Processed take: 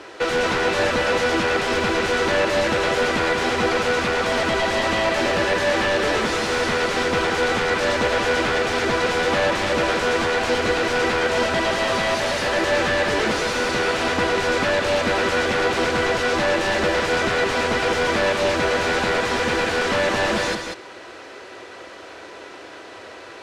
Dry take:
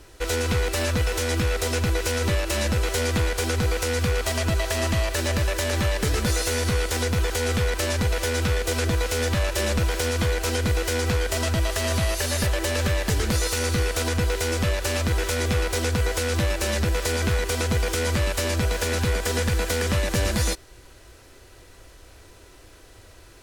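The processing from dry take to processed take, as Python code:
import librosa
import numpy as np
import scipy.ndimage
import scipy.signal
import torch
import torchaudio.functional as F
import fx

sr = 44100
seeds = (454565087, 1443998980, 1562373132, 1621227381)

p1 = scipy.signal.sosfilt(scipy.signal.butter(2, 250.0, 'highpass', fs=sr, output='sos'), x)
p2 = fx.low_shelf(p1, sr, hz=420.0, db=-9.5)
p3 = fx.fold_sine(p2, sr, drive_db=16, ceiling_db=-13.0)
p4 = p2 + (p3 * librosa.db_to_amplitude(-5.0))
p5 = fx.spacing_loss(p4, sr, db_at_10k=25)
p6 = p5 + fx.echo_single(p5, sr, ms=189, db=-6.0, dry=0)
y = p6 * librosa.db_to_amplitude(2.5)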